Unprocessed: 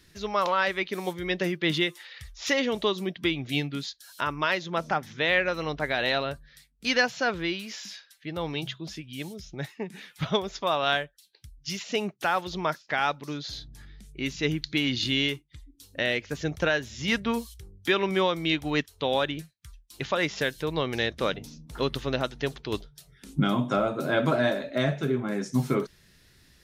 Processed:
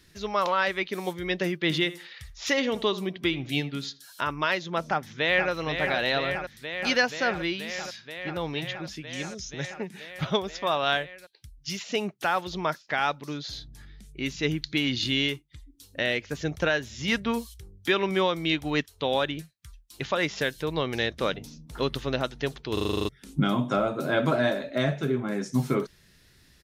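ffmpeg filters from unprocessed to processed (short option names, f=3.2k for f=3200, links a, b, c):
-filter_complex "[0:a]asettb=1/sr,asplit=3[a][b][c];[a]atrim=end=1.634[d];[b]atrim=start=1.63:end=4.31,asetpts=PTS-STARTPTS,afade=t=in:d=0.004:c=qsin,afade=t=out:st=2.676:d=0.004:c=qsin,asplit=2[e][f];[f]adelay=80,lowpass=f=2.1k:p=1,volume=-15.5dB,asplit=2[g][h];[h]adelay=80,lowpass=f=2.1k:p=1,volume=0.28,asplit=2[i][j];[j]adelay=80,lowpass=f=2.1k:p=1,volume=0.28[k];[e][g][i][k]amix=inputs=4:normalize=0,atrim=end_sample=118188[l];[c]atrim=start=4.306[m];[d][l]acrossfade=d=0.004:c1=hsin:c2=qsin[n];[n][m]acrossfade=d=0.004:c1=qsin:c2=hsin,asplit=2[o][p];[p]afade=t=in:st=4.86:d=0.01,afade=t=out:st=5.5:d=0.01,aecho=0:1:480|960|1440|1920|2400|2880|3360|3840|4320|4800|5280|5760:0.446684|0.379681|0.322729|0.27432|0.233172|0.198196|0.168467|0.143197|0.121717|0.103459|0.0879406|0.0747495[q];[o][q]amix=inputs=2:normalize=0,asettb=1/sr,asplit=3[r][s][t];[r]atrim=end=9.074[u];[s]atrim=start=9.07:end=9.74,asetpts=PTS-STARTPTS,afade=t=in:d=0.004:c=qsin,afade=t=out:st=0.666:d=0.004:c=qsin,lowpass=f=6.4k:t=q:w=4.7[v];[t]atrim=start=9.736[w];[u][v]acrossfade=d=0.004:c1=hsin:c2=qsin[x];[x][w]acrossfade=d=0.004:c1=qsin:c2=hsin,asplit=10[y][z][aa][ab][ac][ad][ae][af][ag][ah];[y]atrim=end=22.772[ai];[z]atrim=start=22.728:end=22.772[aj];[aa]atrim=start=22.728:end=22.772[ak];[ab]atrim=start=22.728:end=22.772[al];[ac]atrim=start=22.728:end=22.772[am];[ad]atrim=start=22.728:end=22.772[an];[ae]atrim=start=22.728:end=22.772[ao];[af]atrim=start=22.728:end=22.772[ap];[ag]atrim=start=22.728:end=22.772[aq];[ah]atrim=start=23.088[ar];[ai][aj]acrossfade=d=0.004:c1=hsin:c2=hsin[as];[as][ak]acrossfade=d=0.004:c1=hsin:c2=hsin[at];[at][al]acrossfade=d=0.004:c1=hsin:c2=hsin[au];[au][am]acrossfade=d=0.004:c1=hsin:c2=hsin[av];[av][an]acrossfade=d=0.004:c1=hsin:c2=hsin[aw];[aw][ao]acrossfade=d=0.004:c1=hsin:c2=hsin[ax];[ax][ap]acrossfade=d=0.004:c1=hsin:c2=hsin[ay];[ay][aq]acrossfade=d=0.004:c1=hsin:c2=hsin[az];[az][ar]acrossfade=d=0.004:c1=hsin:c2=hsin"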